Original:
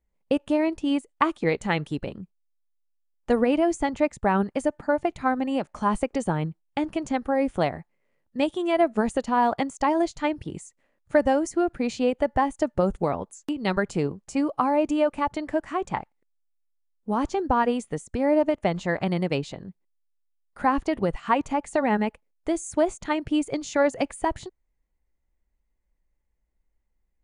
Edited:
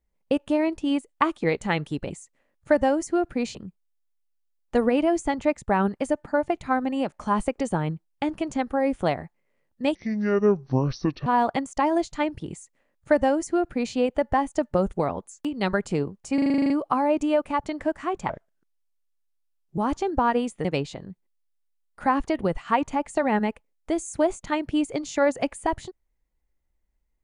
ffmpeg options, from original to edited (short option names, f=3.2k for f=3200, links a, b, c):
-filter_complex "[0:a]asplit=17[a][b][c][d][e][f][g][h][i][j][k][l][m][n][o][p][q];[a]atrim=end=2.102[r];[b]atrim=start=10.538:end=11.992[s];[c]atrim=start=2.098:end=8.504[t];[d]atrim=start=8.5:end=9.3,asetpts=PTS-STARTPTS,asetrate=26901,aresample=44100,atrim=end_sample=57836,asetpts=PTS-STARTPTS[u];[e]atrim=start=9.296:end=14.422[v];[f]atrim=start=14.378:end=14.422[w];[g]atrim=start=14.378:end=14.422[x];[h]atrim=start=14.378:end=14.422[y];[i]atrim=start=14.378:end=14.422[z];[j]atrim=start=14.378:end=14.422[aa];[k]atrim=start=14.378:end=14.422[ab];[l]atrim=start=14.378:end=14.422[ac];[m]atrim=start=14.378:end=14.422[ad];[n]atrim=start=14.378:end=15.974[ae];[o]atrim=start=15.97:end=17.1,asetpts=PTS-STARTPTS,asetrate=33516,aresample=44100[af];[p]atrim=start=17.096:end=17.972[ag];[q]atrim=start=19.228[ah];[r][s]acrossfade=d=0.004:c1=hsin:c2=hsin[ai];[ai][t]acrossfade=d=0.004:c1=hsin:c2=hsin[aj];[aj][u]acrossfade=d=0.004:c1=hsin:c2=hsin[ak];[ak][v]acrossfade=d=0.004:c1=hsin:c2=hsin[al];[al][w]acrossfade=d=0.004:c1=hsin:c2=hsin[am];[am][x]acrossfade=d=0.004:c1=hsin:c2=hsin[an];[an][y]acrossfade=d=0.004:c1=hsin:c2=hsin[ao];[ao][z]acrossfade=d=0.004:c1=hsin:c2=hsin[ap];[ap][aa]acrossfade=d=0.004:c1=hsin:c2=hsin[aq];[aq][ab]acrossfade=d=0.004:c1=hsin:c2=hsin[ar];[ar][ac]acrossfade=d=0.004:c1=hsin:c2=hsin[as];[as][ad]acrossfade=d=0.004:c1=hsin:c2=hsin[at];[at][ae]acrossfade=d=0.004:c1=hsin:c2=hsin[au];[au][af]acrossfade=d=0.004:c1=hsin:c2=hsin[av];[av][ag]acrossfade=d=0.004:c1=hsin:c2=hsin[aw];[aw][ah]acrossfade=d=0.004:c1=hsin:c2=hsin"